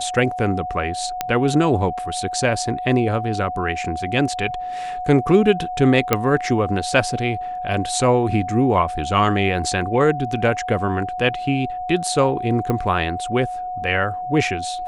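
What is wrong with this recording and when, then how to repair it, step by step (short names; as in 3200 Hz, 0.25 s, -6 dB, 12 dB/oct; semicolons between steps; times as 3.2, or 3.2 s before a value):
tone 730 Hz -25 dBFS
1.21 pop -6 dBFS
6.13 pop -1 dBFS
12.7 pop -11 dBFS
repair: de-click; notch 730 Hz, Q 30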